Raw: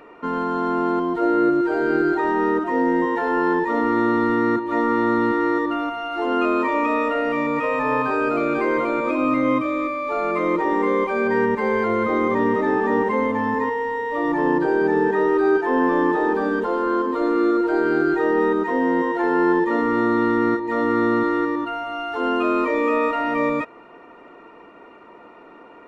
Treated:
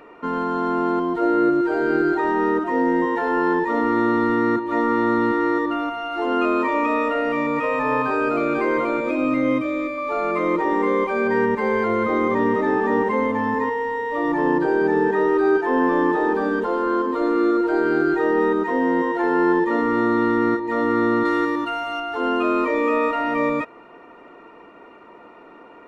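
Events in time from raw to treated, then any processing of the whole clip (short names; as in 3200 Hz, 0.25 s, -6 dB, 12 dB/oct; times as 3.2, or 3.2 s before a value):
8.97–9.98 bell 1100 Hz -10.5 dB 0.33 oct
21.25–22 high shelf 2600 Hz +10 dB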